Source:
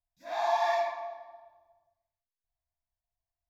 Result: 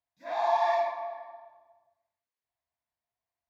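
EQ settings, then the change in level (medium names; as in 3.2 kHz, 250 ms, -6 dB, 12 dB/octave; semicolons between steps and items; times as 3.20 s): high-pass 72 Hz; dynamic bell 1.7 kHz, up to -6 dB, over -43 dBFS, Q 0.78; graphic EQ 125/250/500/1000/2000/4000 Hz +4/+9/+9/+10/+10/+5 dB; -8.0 dB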